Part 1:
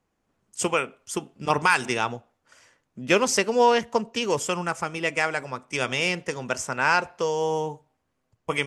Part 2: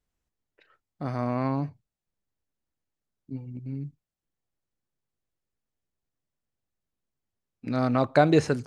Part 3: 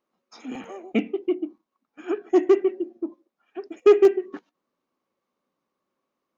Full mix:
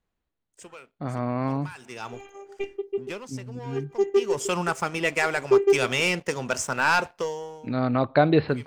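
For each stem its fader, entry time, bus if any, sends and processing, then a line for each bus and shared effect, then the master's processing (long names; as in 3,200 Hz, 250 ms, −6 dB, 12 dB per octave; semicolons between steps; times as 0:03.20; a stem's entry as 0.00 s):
−5.0 dB, 0.00 s, no send, leveller curve on the samples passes 2; automatic ducking −22 dB, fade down 0.50 s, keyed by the second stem
+0.5 dB, 0.00 s, no send, Butterworth low-pass 4,500 Hz 96 dB per octave
−7.0 dB, 1.65 s, no send, bass and treble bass +5 dB, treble +9 dB; comb filter 5.1 ms, depth 38%; phases set to zero 399 Hz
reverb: not used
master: no processing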